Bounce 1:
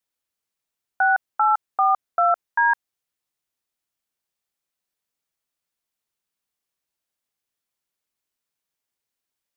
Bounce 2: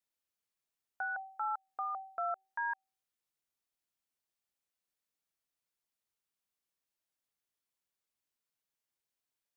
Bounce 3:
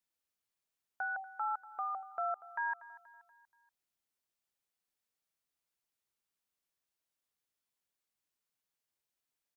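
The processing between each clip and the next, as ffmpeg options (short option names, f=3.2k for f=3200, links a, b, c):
-af "alimiter=limit=-22dB:level=0:latency=1:release=167,bandreject=f=384.5:t=h:w=4,bandreject=f=769:t=h:w=4,volume=-6.5dB"
-af "aecho=1:1:239|478|717|956:0.126|0.0604|0.029|0.0139"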